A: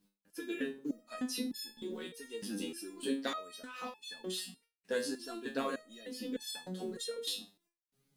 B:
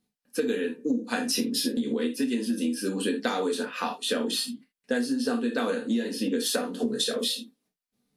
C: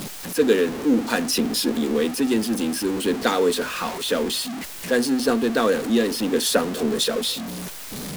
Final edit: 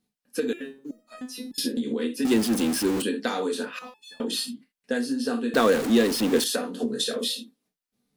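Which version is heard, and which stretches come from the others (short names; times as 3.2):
B
0.53–1.58 from A
2.25–3.02 from C
3.79–4.2 from A
5.54–6.44 from C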